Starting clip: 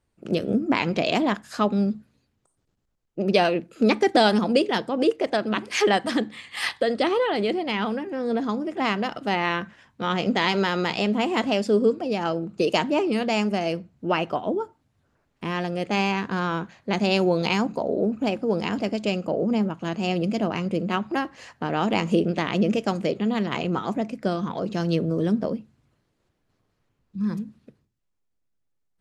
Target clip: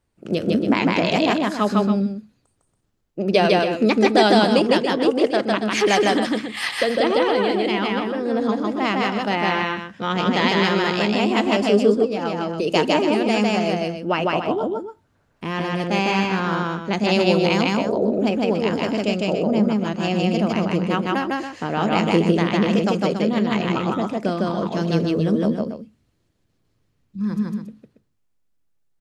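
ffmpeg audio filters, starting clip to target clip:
ffmpeg -i in.wav -filter_complex "[0:a]asettb=1/sr,asplit=3[link_01][link_02][link_03];[link_01]atrim=end=25.484[link_04];[link_02]atrim=start=25.48:end=27.19,asetpts=PTS-STARTPTS,afade=type=in:duration=0.004:curve=qsin,afade=type=out:start_time=1.706:duration=0.004:curve=qsin,equalizer=frequency=980:width=0.49:gain=-7[link_05];[link_03]atrim=start=27.186[link_06];[link_04][link_05]acrossfade=duration=0.004:curve1=hsin:curve2=qsin[link_07];[link_07][link_06]acrossfade=duration=0.004:curve1=qsin:curve2=hsin,aecho=1:1:154.5|279.9:0.891|0.355,asplit=3[link_08][link_09][link_10];[link_08]afade=type=out:start_time=12.04:duration=0.02[link_11];[link_09]acompressor=threshold=-22dB:ratio=3,afade=type=in:start_time=12.04:duration=0.02,afade=type=out:start_time=12.65:duration=0.02[link_12];[link_10]afade=type=in:start_time=12.65:duration=0.02[link_13];[link_11][link_12][link_13]amix=inputs=3:normalize=0,volume=1.5dB" out.wav

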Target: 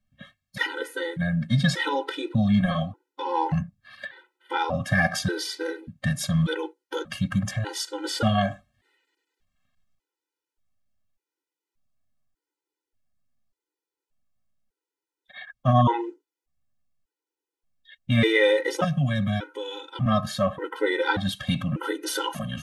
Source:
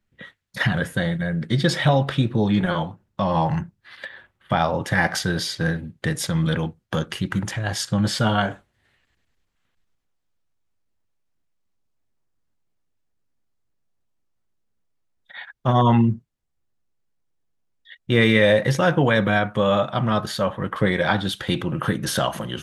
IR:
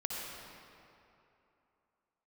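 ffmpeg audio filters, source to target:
-filter_complex "[0:a]asettb=1/sr,asplit=3[link_01][link_02][link_03];[link_01]atrim=end=18.844[link_04];[link_02]atrim=start=18.84:end=20.06,asetpts=PTS-STARTPTS,afade=type=in:duration=0.004:curve=qsin,afade=type=out:start_time=1.216:duration=0.004:curve=qsin,acrossover=split=220|3000[link_05][link_06][link_07];[link_06]acompressor=threshold=-30dB:ratio=6[link_08];[link_05][link_08][link_07]amix=inputs=3:normalize=0[link_09];[link_03]atrim=start=20.056[link_10];[link_04][link_09]acrossfade=duration=0.004:curve1=hsin:curve2=qsin[link_11];[link_11][link_10]acrossfade=duration=0.004:curve1=qsin:curve2=hsin,afftfilt=real='re*gt(sin(2*PI*0.85*pts/sr)*(1-2*mod(floor(b*sr/1024/260),2)),0)':imag='im*gt(sin(2*PI*0.85*pts/sr)*(1-2*mod(floor(b*sr/1024/260),2)),0)':win_size=1024:overlap=0.75"

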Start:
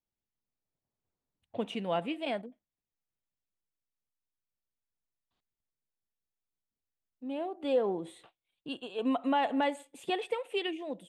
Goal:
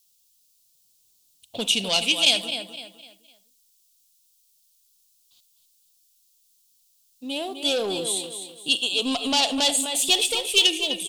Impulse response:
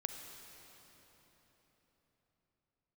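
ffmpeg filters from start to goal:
-filter_complex "[0:a]asettb=1/sr,asplit=3[link_01][link_02][link_03];[link_01]atrim=end=9.774[link_04];[link_02]atrim=start=9.77:end=10.65,asetpts=PTS-STARTPTS,afade=type=in:duration=0.004:curve=qsin,afade=type=out:start_time=0.876:duration=0.004:curve=qsin,aeval=exprs='if(lt(val(0),0),0.708*val(0),val(0))':channel_layout=same[link_05];[link_03]atrim=start=10.646[link_06];[link_04][link_05]acrossfade=duration=0.004:curve1=hsin:curve2=qsin[link_07];[link_07][link_06]acrossfade=duration=0.004:curve1=qsin:curve2=hsin,aecho=1:1:254|508|762|1016:0.335|0.117|0.041|0.0144,asoftclip=type=tanh:threshold=-26dB,aexciter=amount=12.5:drive=7.5:freq=2900,asettb=1/sr,asplit=3[link_08][link_09][link_10];[link_08]atrim=end=1.894[link_11];[link_09]atrim=start=1.89:end=2.46,asetpts=PTS-STARTPTS,afade=type=in:duration=0.004:curve=qsin,afade=type=out:start_time=0.566:duration=0.004:curve=qsin,tiltshelf=frequency=970:gain=-3.5[link_12];[link_10]atrim=start=2.456[link_13];[link_11][link_12]acrossfade=duration=0.004:curve1=hsin:curve2=qsin[link_14];[link_14][link_13]acrossfade=duration=0.004:curve1=qsin:curve2=hsin,asplit=2[link_15][link_16];[1:a]atrim=start_sample=2205,atrim=end_sample=6174,asetrate=57330,aresample=44100[link_17];[link_16][link_17]afir=irnorm=-1:irlink=0,volume=1.5dB[link_18];[link_15][link_18]amix=inputs=2:normalize=0"

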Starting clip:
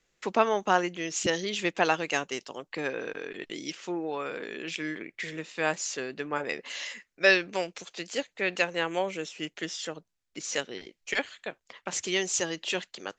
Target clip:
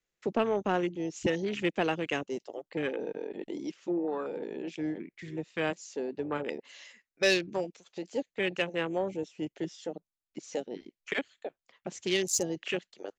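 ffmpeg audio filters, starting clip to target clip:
ffmpeg -i in.wav -filter_complex "[0:a]afwtdn=0.0251,atempo=1,acrossover=split=480|3000[link_01][link_02][link_03];[link_02]acompressor=threshold=-44dB:ratio=2[link_04];[link_01][link_04][link_03]amix=inputs=3:normalize=0,asoftclip=type=tanh:threshold=-17.5dB,volume=3dB" out.wav

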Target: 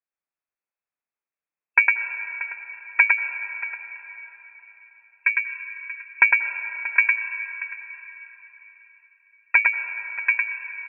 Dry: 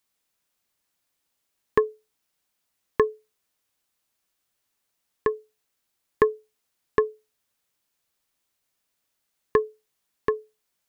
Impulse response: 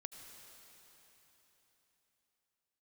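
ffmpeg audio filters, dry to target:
-filter_complex "[0:a]afwtdn=0.0224,asplit=2[link_01][link_02];[link_02]asetrate=33038,aresample=44100,atempo=1.33484,volume=-5dB[link_03];[link_01][link_03]amix=inputs=2:normalize=0,aecho=1:1:633:0.178,asplit=2[link_04][link_05];[1:a]atrim=start_sample=2205,adelay=106[link_06];[link_05][link_06]afir=irnorm=-1:irlink=0,volume=2.5dB[link_07];[link_04][link_07]amix=inputs=2:normalize=0,lowpass=frequency=2300:width_type=q:width=0.5098,lowpass=frequency=2300:width_type=q:width=0.6013,lowpass=frequency=2300:width_type=q:width=0.9,lowpass=frequency=2300:width_type=q:width=2.563,afreqshift=-2700,volume=2dB"

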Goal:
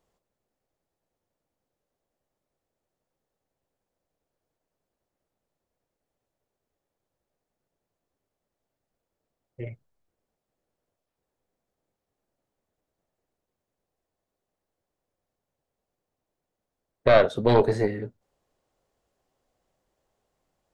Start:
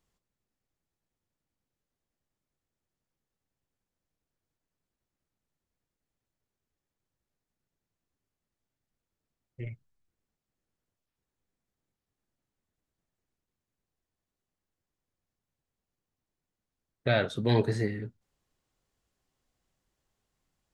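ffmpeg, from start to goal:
ffmpeg -i in.wav -af "equalizer=frequency=590:width_type=o:width=1.6:gain=12,aeval=exprs='0.562*(cos(1*acos(clip(val(0)/0.562,-1,1)))-cos(1*PI/2))+0.2*(cos(2*acos(clip(val(0)/0.562,-1,1)))-cos(2*PI/2))':channel_layout=same" out.wav

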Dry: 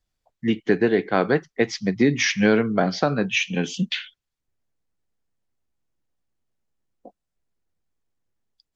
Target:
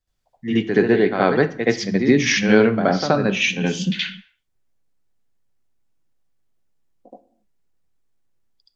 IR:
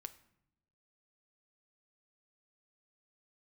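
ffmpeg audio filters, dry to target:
-filter_complex "[0:a]asplit=2[link_01][link_02];[1:a]atrim=start_sample=2205,afade=type=out:start_time=0.34:duration=0.01,atrim=end_sample=15435,adelay=74[link_03];[link_02][link_03]afir=irnorm=-1:irlink=0,volume=12.5dB[link_04];[link_01][link_04]amix=inputs=2:normalize=0,volume=-5dB"

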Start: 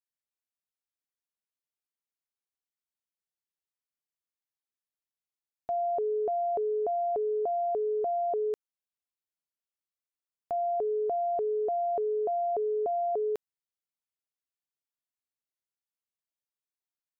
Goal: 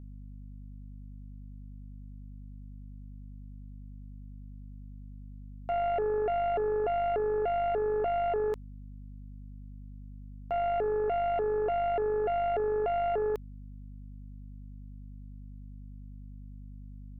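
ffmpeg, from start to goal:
ffmpeg -i in.wav -af "aeval=exprs='val(0)+0.00631*(sin(2*PI*50*n/s)+sin(2*PI*2*50*n/s)/2+sin(2*PI*3*50*n/s)/3+sin(2*PI*4*50*n/s)/4+sin(2*PI*5*50*n/s)/5)':channel_layout=same,aeval=exprs='0.0631*(cos(1*acos(clip(val(0)/0.0631,-1,1)))-cos(1*PI/2))+0.0224*(cos(2*acos(clip(val(0)/0.0631,-1,1)))-cos(2*PI/2))+0.00891*(cos(4*acos(clip(val(0)/0.0631,-1,1)))-cos(4*PI/2))+0.000398*(cos(5*acos(clip(val(0)/0.0631,-1,1)))-cos(5*PI/2))+0.000631*(cos(6*acos(clip(val(0)/0.0631,-1,1)))-cos(6*PI/2))':channel_layout=same" out.wav

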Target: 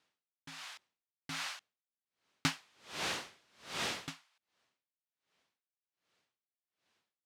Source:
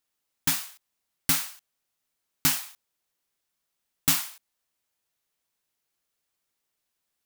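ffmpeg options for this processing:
ffmpeg -i in.wav -filter_complex "[0:a]asettb=1/sr,asplit=3[link_01][link_02][link_03];[link_01]atrim=end=2.474[link_04];[link_02]atrim=start=2.47:end=4.1,asetpts=PTS-STARTPTS,afade=type=in:duration=0.004:curve=qsin,afade=type=out:start_time=1.626:duration=0.004:curve=qsin,aeval=exprs='val(0)+0.5*0.0266*sgn(val(0))':channel_layout=same[link_05];[link_03]atrim=start=4.096[link_06];[link_04][link_05]acrossfade=duration=0.004:curve1=hsin:curve2=qsin[link_07];[link_07][link_06]acrossfade=duration=0.004:curve1=qsin:curve2=hsin,highpass=100,lowpass=4100,aeval=exprs='val(0)*pow(10,-37*(0.5-0.5*cos(2*PI*1.3*n/s))/20)':channel_layout=same,volume=10dB" out.wav

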